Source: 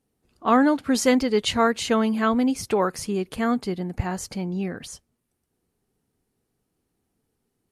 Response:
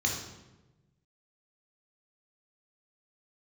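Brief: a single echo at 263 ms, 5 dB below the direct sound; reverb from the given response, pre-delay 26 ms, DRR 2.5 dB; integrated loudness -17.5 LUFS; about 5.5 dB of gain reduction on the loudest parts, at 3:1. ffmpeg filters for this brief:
-filter_complex "[0:a]acompressor=threshold=0.0891:ratio=3,aecho=1:1:263:0.562,asplit=2[s0][s1];[1:a]atrim=start_sample=2205,adelay=26[s2];[s1][s2]afir=irnorm=-1:irlink=0,volume=0.316[s3];[s0][s3]amix=inputs=2:normalize=0,volume=1.78"

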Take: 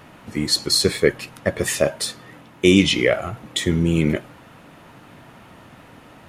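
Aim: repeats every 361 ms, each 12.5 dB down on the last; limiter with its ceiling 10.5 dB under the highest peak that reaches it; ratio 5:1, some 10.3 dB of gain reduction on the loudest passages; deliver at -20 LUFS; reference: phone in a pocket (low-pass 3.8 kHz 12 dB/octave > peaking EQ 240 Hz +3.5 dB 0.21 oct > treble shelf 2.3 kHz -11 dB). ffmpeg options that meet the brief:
-af "acompressor=threshold=0.0891:ratio=5,alimiter=limit=0.106:level=0:latency=1,lowpass=3800,equalizer=f=240:t=o:w=0.21:g=3.5,highshelf=f=2300:g=-11,aecho=1:1:361|722|1083:0.237|0.0569|0.0137,volume=5.01"

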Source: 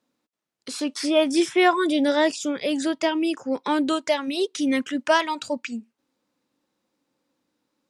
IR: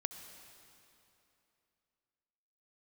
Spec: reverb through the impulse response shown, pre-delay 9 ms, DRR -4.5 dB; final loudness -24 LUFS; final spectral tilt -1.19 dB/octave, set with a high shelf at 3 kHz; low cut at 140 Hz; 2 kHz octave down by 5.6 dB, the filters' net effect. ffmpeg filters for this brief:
-filter_complex "[0:a]highpass=140,equalizer=f=2000:t=o:g=-5.5,highshelf=f=3000:g=-4.5,asplit=2[s0][s1];[1:a]atrim=start_sample=2205,adelay=9[s2];[s1][s2]afir=irnorm=-1:irlink=0,volume=1.78[s3];[s0][s3]amix=inputs=2:normalize=0,volume=0.562"

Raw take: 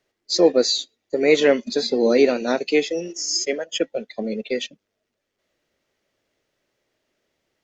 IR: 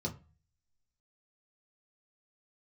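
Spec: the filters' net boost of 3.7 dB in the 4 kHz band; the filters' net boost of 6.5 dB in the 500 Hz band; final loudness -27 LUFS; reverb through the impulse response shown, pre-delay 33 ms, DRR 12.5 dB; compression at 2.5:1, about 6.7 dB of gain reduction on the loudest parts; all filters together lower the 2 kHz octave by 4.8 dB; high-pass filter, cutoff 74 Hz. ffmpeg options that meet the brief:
-filter_complex "[0:a]highpass=74,equalizer=f=500:t=o:g=7.5,equalizer=f=2000:t=o:g=-8,equalizer=f=4000:t=o:g=6,acompressor=threshold=0.178:ratio=2.5,asplit=2[s0][s1];[1:a]atrim=start_sample=2205,adelay=33[s2];[s1][s2]afir=irnorm=-1:irlink=0,volume=0.188[s3];[s0][s3]amix=inputs=2:normalize=0,volume=0.398"

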